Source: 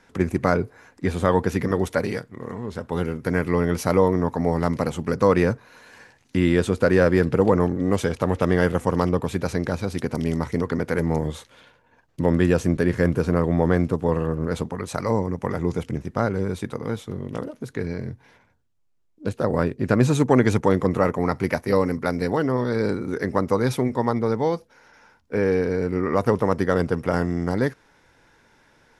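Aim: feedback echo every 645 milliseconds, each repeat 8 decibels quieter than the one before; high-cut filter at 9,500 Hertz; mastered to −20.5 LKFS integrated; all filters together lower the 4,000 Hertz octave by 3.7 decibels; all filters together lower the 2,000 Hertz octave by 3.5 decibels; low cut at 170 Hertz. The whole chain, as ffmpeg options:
ffmpeg -i in.wav -af "highpass=170,lowpass=9500,equalizer=frequency=2000:width_type=o:gain=-4,equalizer=frequency=4000:width_type=o:gain=-3.5,aecho=1:1:645|1290|1935|2580|3225:0.398|0.159|0.0637|0.0255|0.0102,volume=3.5dB" out.wav

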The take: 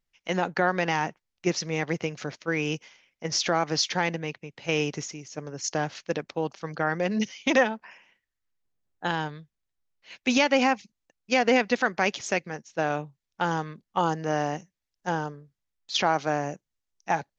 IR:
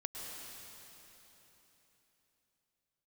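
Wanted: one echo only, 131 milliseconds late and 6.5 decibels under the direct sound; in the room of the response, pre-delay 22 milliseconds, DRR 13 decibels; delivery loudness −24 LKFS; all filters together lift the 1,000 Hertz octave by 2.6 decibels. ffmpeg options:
-filter_complex "[0:a]equalizer=frequency=1000:width_type=o:gain=3.5,aecho=1:1:131:0.473,asplit=2[link_01][link_02];[1:a]atrim=start_sample=2205,adelay=22[link_03];[link_02][link_03]afir=irnorm=-1:irlink=0,volume=-13dB[link_04];[link_01][link_04]amix=inputs=2:normalize=0,volume=1.5dB"

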